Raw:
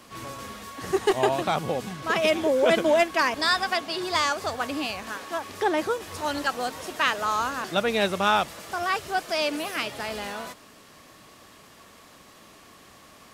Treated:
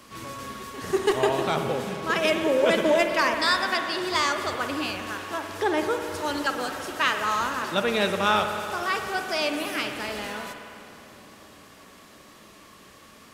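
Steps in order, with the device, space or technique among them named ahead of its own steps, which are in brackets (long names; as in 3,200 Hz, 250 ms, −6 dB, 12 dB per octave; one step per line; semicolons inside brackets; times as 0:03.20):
parametric band 730 Hz −6 dB 0.29 octaves
backwards echo 333 ms −22.5 dB
dub delay into a spring reverb (feedback echo with a low-pass in the loop 342 ms, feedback 83%, low-pass 1,600 Hz, level −22 dB; spring reverb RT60 2.6 s, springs 52 ms, chirp 75 ms, DRR 5.5 dB)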